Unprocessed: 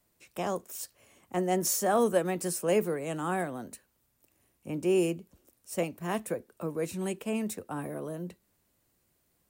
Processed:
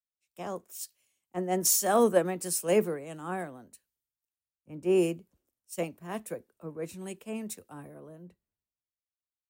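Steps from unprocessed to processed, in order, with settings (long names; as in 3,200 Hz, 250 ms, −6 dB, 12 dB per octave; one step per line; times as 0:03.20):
multiband upward and downward expander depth 100%
level −4 dB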